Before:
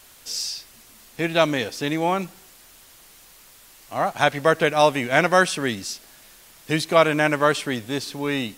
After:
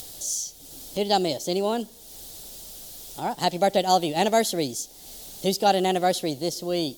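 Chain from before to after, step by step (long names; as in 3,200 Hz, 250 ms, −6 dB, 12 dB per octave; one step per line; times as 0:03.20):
speed change +23%
flat-topped bell 1,600 Hz −14 dB
upward compression, threshold −31 dBFS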